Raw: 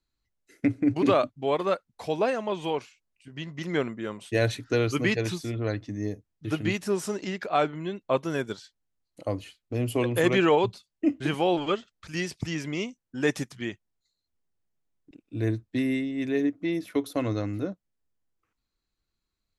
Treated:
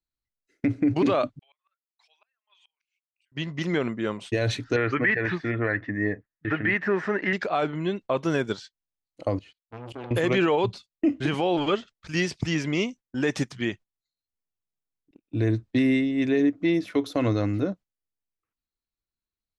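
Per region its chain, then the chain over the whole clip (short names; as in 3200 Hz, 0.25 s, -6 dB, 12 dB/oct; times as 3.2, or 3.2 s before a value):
1.39–3.32 formant sharpening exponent 1.5 + HPF 1500 Hz 24 dB/oct + flipped gate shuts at -38 dBFS, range -30 dB
4.76–7.33 synth low-pass 1800 Hz, resonance Q 7.4 + low shelf 130 Hz -7.5 dB
9.39–10.11 level quantiser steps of 19 dB + air absorption 55 m + core saturation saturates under 930 Hz
whole clip: gate -46 dBFS, range -17 dB; LPF 6400 Hz 12 dB/oct; limiter -19.5 dBFS; gain +5.5 dB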